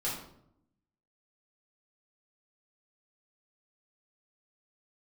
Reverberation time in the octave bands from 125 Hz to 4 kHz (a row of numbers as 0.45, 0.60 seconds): 1.1, 1.1, 0.80, 0.65, 0.50, 0.45 seconds